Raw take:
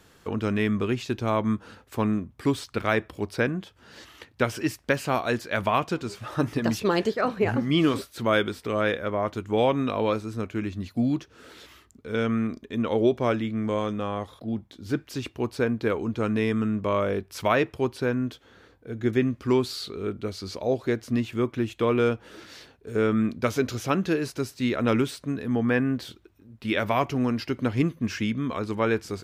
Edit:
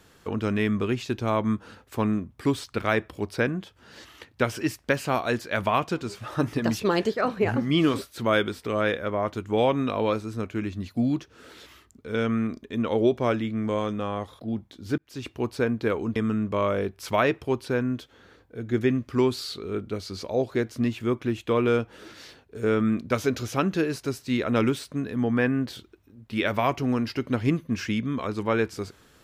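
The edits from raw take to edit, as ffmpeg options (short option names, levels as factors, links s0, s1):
-filter_complex "[0:a]asplit=3[s0][s1][s2];[s0]atrim=end=14.98,asetpts=PTS-STARTPTS,afade=t=out:st=14.976:d=0.004:c=hsin[s3];[s1]atrim=start=14.98:end=16.162,asetpts=PTS-STARTPTS,afade=t=in:d=0.33[s4];[s2]atrim=start=16.478[s5];[s3][s4]concat=n=2:v=0:a=1[s6];[s6][s5]acrossfade=d=0.004:c1=hsin:c2=hsin"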